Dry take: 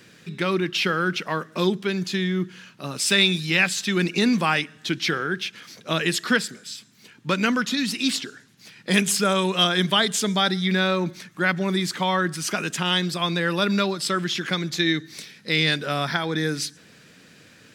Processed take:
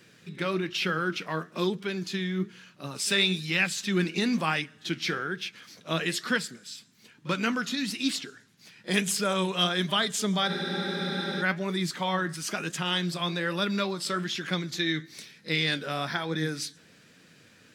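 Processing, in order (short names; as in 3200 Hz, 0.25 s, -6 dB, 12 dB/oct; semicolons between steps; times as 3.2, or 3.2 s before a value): flange 1.1 Hz, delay 5.3 ms, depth 7.6 ms, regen +69%; reverse echo 39 ms -21.5 dB; spectral freeze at 10.49, 0.92 s; gain -1.5 dB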